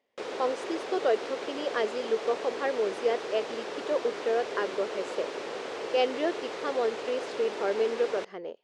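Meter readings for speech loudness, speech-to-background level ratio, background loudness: −31.0 LKFS, 5.5 dB, −36.5 LKFS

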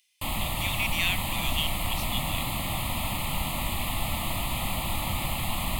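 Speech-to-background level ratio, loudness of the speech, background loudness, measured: −2.0 dB, −31.5 LKFS, −29.5 LKFS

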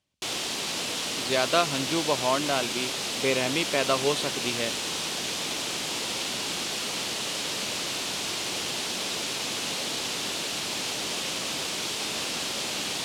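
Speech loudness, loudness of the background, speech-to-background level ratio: −28.0 LKFS, −28.5 LKFS, 0.5 dB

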